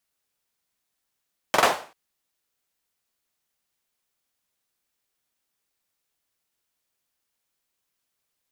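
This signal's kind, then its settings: hand clap length 0.39 s, bursts 3, apart 44 ms, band 740 Hz, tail 0.40 s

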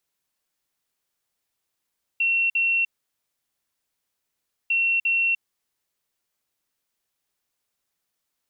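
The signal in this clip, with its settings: beep pattern sine 2720 Hz, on 0.30 s, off 0.05 s, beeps 2, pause 1.85 s, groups 2, -18.5 dBFS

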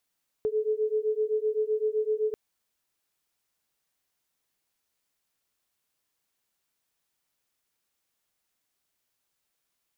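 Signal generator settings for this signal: beating tones 427 Hz, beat 7.8 Hz, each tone -27.5 dBFS 1.89 s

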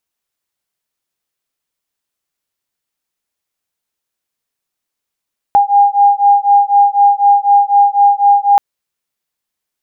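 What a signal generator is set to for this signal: beating tones 808 Hz, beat 4 Hz, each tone -9.5 dBFS 3.03 s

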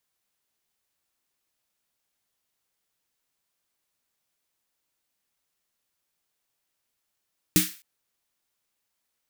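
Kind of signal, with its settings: snare drum length 0.26 s, tones 180 Hz, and 310 Hz, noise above 1600 Hz, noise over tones -1 dB, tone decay 0.20 s, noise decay 0.38 s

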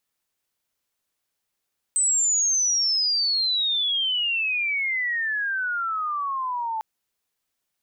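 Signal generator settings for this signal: chirp logarithmic 8200 Hz -> 870 Hz -18 dBFS -> -25 dBFS 4.85 s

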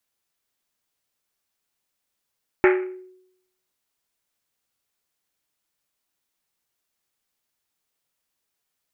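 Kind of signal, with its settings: Risset drum, pitch 370 Hz, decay 0.79 s, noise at 1800 Hz, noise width 1200 Hz, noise 25%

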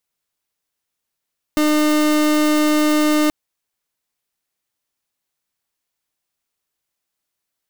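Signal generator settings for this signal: pulse 303 Hz, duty 37% -15.5 dBFS 1.73 s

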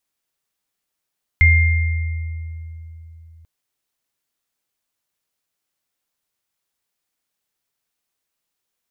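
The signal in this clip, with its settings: sine partials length 2.04 s, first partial 81.9 Hz, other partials 2110 Hz, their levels -1 dB, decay 3.61 s, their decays 1.65 s, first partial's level -9.5 dB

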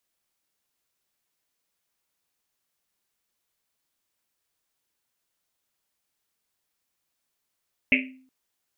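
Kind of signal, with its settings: Risset drum length 0.37 s, pitch 260 Hz, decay 0.56 s, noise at 2400 Hz, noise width 710 Hz, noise 55%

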